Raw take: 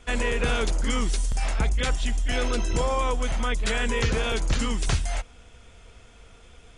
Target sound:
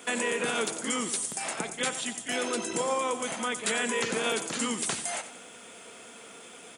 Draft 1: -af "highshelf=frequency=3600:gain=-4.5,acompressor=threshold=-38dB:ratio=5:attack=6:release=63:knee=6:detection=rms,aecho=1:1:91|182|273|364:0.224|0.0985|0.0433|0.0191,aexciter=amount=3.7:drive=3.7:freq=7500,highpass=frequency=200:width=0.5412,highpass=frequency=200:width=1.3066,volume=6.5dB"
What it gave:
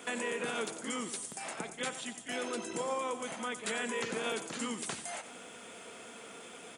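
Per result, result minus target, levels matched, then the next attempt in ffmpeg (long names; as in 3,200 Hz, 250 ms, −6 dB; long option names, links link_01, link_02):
downward compressor: peak gain reduction +6 dB; 8,000 Hz band −2.0 dB
-af "highshelf=frequency=3600:gain=-4.5,acompressor=threshold=-30.5dB:ratio=5:attack=6:release=63:knee=6:detection=rms,aecho=1:1:91|182|273|364:0.224|0.0985|0.0433|0.0191,aexciter=amount=3.7:drive=3.7:freq=7500,highpass=frequency=200:width=0.5412,highpass=frequency=200:width=1.3066,volume=6.5dB"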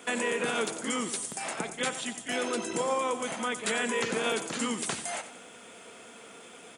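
8,000 Hz band −2.5 dB
-af "acompressor=threshold=-30.5dB:ratio=5:attack=6:release=63:knee=6:detection=rms,aecho=1:1:91|182|273|364:0.224|0.0985|0.0433|0.0191,aexciter=amount=3.7:drive=3.7:freq=7500,highpass=frequency=200:width=0.5412,highpass=frequency=200:width=1.3066,volume=6.5dB"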